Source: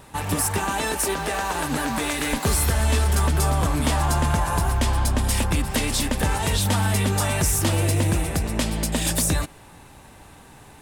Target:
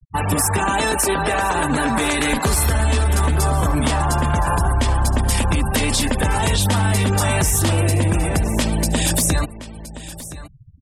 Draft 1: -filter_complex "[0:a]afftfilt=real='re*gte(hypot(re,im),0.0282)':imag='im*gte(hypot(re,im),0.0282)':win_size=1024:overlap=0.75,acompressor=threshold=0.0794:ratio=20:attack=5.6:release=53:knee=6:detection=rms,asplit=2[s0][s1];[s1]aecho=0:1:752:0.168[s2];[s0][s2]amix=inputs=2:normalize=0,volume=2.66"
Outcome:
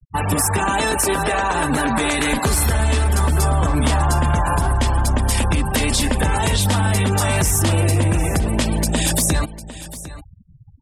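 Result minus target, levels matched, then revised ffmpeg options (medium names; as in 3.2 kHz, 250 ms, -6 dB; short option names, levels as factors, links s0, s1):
echo 267 ms early
-filter_complex "[0:a]afftfilt=real='re*gte(hypot(re,im),0.0282)':imag='im*gte(hypot(re,im),0.0282)':win_size=1024:overlap=0.75,acompressor=threshold=0.0794:ratio=20:attack=5.6:release=53:knee=6:detection=rms,asplit=2[s0][s1];[s1]aecho=0:1:1019:0.168[s2];[s0][s2]amix=inputs=2:normalize=0,volume=2.66"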